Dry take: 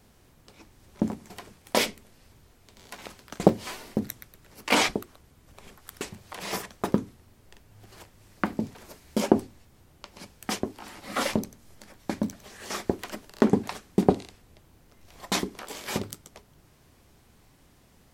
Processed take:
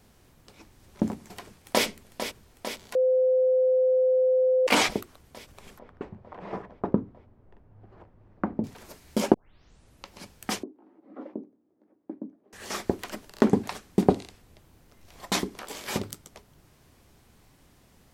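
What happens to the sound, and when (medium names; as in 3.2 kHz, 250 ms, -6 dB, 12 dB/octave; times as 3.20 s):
1.32–1.86 s: echo throw 450 ms, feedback 80%, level -9.5 dB
2.95–4.67 s: bleep 514 Hz -18.5 dBFS
5.79–8.64 s: low-pass 1 kHz
9.34 s: tape start 0.75 s
10.63–12.53 s: ladder band-pass 340 Hz, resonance 60%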